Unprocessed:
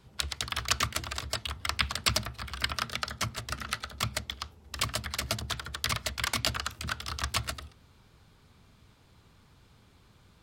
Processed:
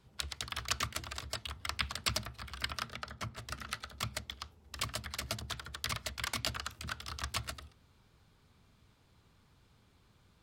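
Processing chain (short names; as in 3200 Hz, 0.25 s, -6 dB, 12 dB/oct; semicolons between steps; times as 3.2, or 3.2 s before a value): 2.89–3.39 high shelf 2900 Hz -9.5 dB; gain -6.5 dB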